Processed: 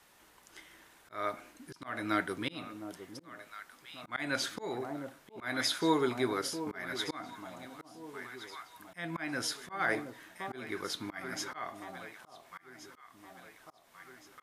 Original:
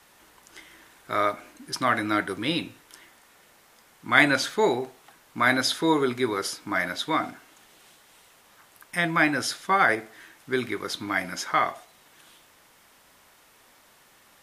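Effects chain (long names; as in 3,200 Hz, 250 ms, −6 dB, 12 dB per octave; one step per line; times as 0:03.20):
delay that swaps between a low-pass and a high-pass 710 ms, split 940 Hz, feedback 63%, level −10 dB
volume swells 274 ms
level −6 dB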